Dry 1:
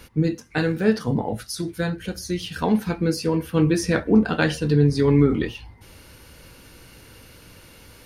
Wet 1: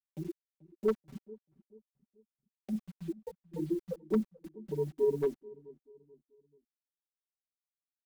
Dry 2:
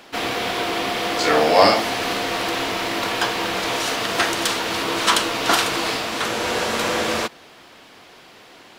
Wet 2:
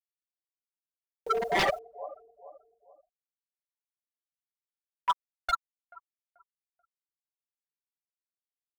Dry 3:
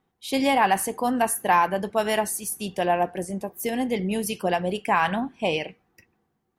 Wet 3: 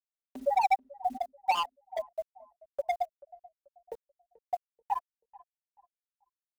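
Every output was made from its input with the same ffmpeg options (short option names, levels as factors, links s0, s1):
-filter_complex "[0:a]afftfilt=real='re*gte(hypot(re,im),0.891)':imag='im*gte(hypot(re,im),0.891)':win_size=1024:overlap=0.75,acompressor=mode=upward:threshold=0.0794:ratio=2.5,highpass=580,aeval=exprs='val(0)+0.000708*(sin(2*PI*50*n/s)+sin(2*PI*2*50*n/s)/2+sin(2*PI*3*50*n/s)/3+sin(2*PI*4*50*n/s)/4+sin(2*PI*5*50*n/s)/5)':c=same,highshelf=f=1600:t=q:w=1.5:g=10,afwtdn=0.00562,acrusher=bits=9:mix=0:aa=0.000001,asplit=2[s0][s1];[s1]adelay=435,lowpass=f=930:p=1,volume=0.1,asplit=2[s2][s3];[s3]adelay=435,lowpass=f=930:p=1,volume=0.41,asplit=2[s4][s5];[s5]adelay=435,lowpass=f=930:p=1,volume=0.41[s6];[s0][s2][s4][s6]amix=inputs=4:normalize=0,aeval=exprs='0.0841*(abs(mod(val(0)/0.0841+3,4)-2)-1)':c=same,aecho=1:1:5.2:0.78"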